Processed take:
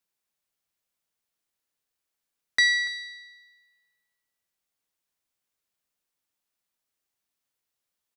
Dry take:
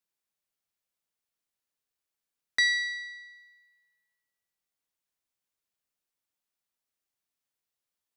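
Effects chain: delay 288 ms -18.5 dB; trim +3.5 dB

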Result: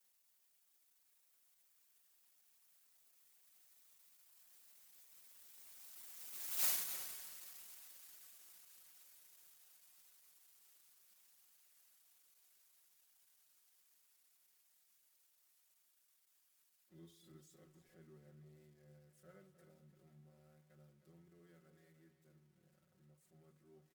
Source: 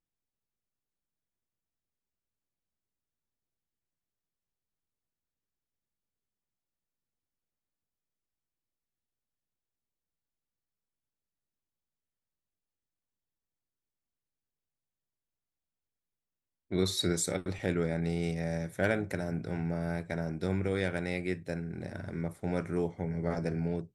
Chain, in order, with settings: zero-crossing glitches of -23.5 dBFS; Doppler pass-by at 6.65 s, 41 m/s, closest 2.4 m; treble shelf 2.3 kHz -11 dB; hum notches 60/120/180/240/300/360/420/480/540 Hz; comb 5.4 ms, depth 99%; echo from a far wall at 53 m, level -10 dB; on a send at -17 dB: reverberation RT60 1.9 s, pre-delay 17 ms; on the sum: trim +9.5 dB

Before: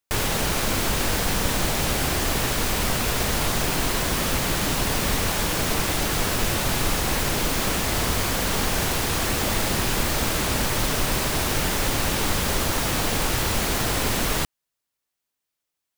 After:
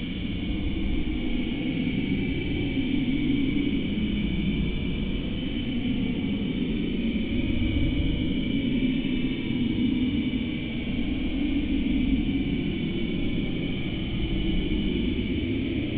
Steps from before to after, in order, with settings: cascade formant filter i; Paulstretch 36×, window 0.05 s, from 1.24 s; trim +8.5 dB

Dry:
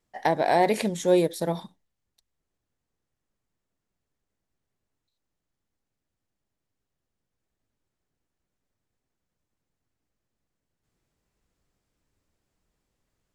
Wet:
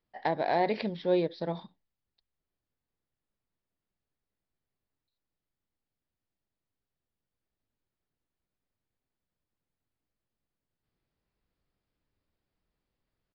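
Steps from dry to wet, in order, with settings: resampled via 11.025 kHz; trim -6 dB

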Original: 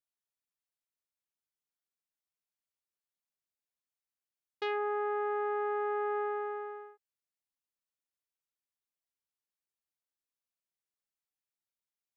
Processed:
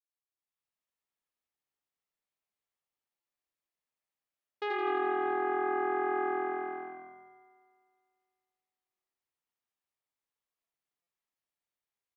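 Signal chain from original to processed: treble shelf 2.6 kHz -10 dB; band-stop 1.5 kHz, Q 13; on a send: frequency-shifting echo 82 ms, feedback 51%, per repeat -42 Hz, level -4.5 dB; on the sum: level rider gain up to 11.5 dB; bass shelf 480 Hz -7 dB; spring tank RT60 2.1 s, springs 56 ms, chirp 30 ms, DRR 1.5 dB; buffer glitch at 3.20/11.02 s, samples 256, times 8; trim -8 dB

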